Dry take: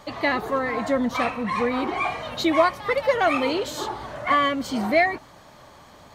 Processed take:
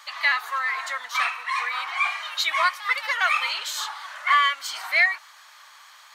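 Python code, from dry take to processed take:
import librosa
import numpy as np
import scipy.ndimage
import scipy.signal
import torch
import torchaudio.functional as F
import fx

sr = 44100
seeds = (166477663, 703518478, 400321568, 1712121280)

y = scipy.signal.sosfilt(scipy.signal.butter(4, 1200.0, 'highpass', fs=sr, output='sos'), x)
y = y * 10.0 ** (5.0 / 20.0)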